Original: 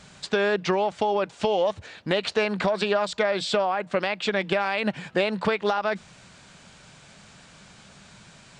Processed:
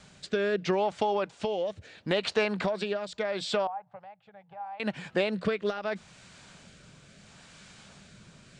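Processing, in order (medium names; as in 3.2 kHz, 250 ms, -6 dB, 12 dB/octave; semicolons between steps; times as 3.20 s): rotary cabinet horn 0.75 Hz; 3.67–4.80 s: two resonant band-passes 310 Hz, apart 2.8 oct; gain riding 2 s; trim -3 dB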